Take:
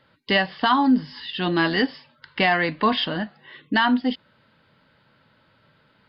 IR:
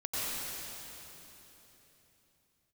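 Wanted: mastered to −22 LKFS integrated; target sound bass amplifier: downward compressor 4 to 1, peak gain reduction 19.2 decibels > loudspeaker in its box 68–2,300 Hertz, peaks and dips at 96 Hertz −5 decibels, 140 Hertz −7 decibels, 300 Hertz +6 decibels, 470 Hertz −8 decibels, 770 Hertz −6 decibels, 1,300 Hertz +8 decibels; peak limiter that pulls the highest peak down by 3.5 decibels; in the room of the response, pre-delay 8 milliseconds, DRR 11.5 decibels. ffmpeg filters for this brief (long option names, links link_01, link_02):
-filter_complex "[0:a]alimiter=limit=-12dB:level=0:latency=1,asplit=2[link_01][link_02];[1:a]atrim=start_sample=2205,adelay=8[link_03];[link_02][link_03]afir=irnorm=-1:irlink=0,volume=-18.5dB[link_04];[link_01][link_04]amix=inputs=2:normalize=0,acompressor=threshold=-38dB:ratio=4,highpass=frequency=68:width=0.5412,highpass=frequency=68:width=1.3066,equalizer=frequency=96:width_type=q:width=4:gain=-5,equalizer=frequency=140:width_type=q:width=4:gain=-7,equalizer=frequency=300:width_type=q:width=4:gain=6,equalizer=frequency=470:width_type=q:width=4:gain=-8,equalizer=frequency=770:width_type=q:width=4:gain=-6,equalizer=frequency=1300:width_type=q:width=4:gain=8,lowpass=frequency=2300:width=0.5412,lowpass=frequency=2300:width=1.3066,volume=17dB"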